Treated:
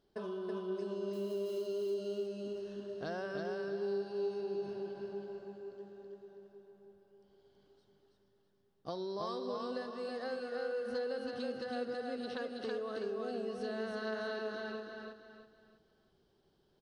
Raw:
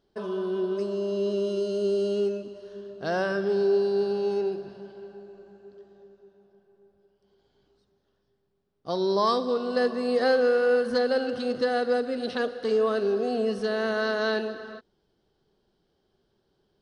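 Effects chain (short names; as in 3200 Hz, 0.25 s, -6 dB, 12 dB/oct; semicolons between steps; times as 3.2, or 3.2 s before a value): 1.13–1.62 switching spikes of -35.5 dBFS; compressor 6:1, threshold -35 dBFS, peak gain reduction 15.5 dB; on a send: feedback echo 0.326 s, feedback 34%, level -3 dB; on the sum: gain -3.5 dB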